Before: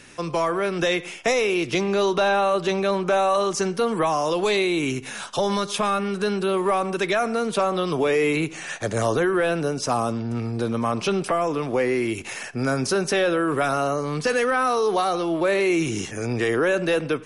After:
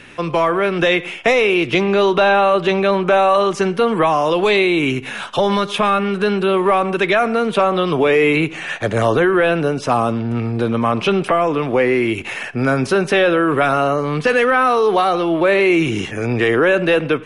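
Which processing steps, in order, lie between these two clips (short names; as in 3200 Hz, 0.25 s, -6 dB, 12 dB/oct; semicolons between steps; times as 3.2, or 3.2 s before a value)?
resonant high shelf 4100 Hz -9 dB, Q 1.5; gain +6.5 dB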